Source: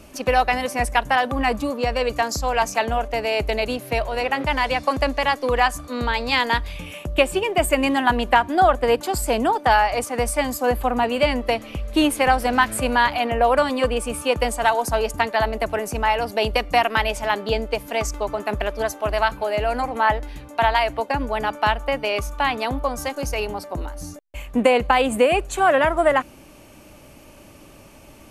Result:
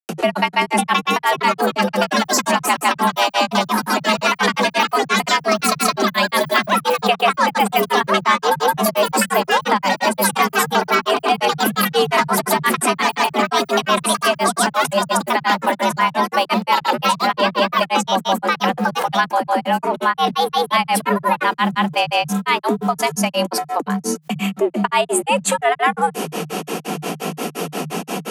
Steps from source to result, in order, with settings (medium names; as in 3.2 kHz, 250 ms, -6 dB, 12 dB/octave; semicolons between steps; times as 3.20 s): dynamic bell 9.1 kHz, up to +6 dB, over -45 dBFS, Q 1.1; ever faster or slower copies 632 ms, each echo +4 st, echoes 3; granulator 139 ms, grains 5.7 per s, pitch spread up and down by 0 st; frequency shift +150 Hz; level flattener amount 70%